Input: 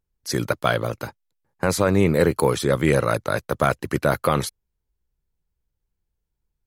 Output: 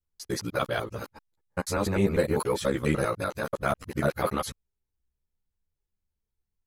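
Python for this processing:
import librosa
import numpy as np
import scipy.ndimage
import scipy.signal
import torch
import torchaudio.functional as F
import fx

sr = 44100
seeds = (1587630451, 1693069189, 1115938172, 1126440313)

y = fx.local_reverse(x, sr, ms=98.0)
y = fx.ensemble(y, sr)
y = y * librosa.db_to_amplitude(-3.5)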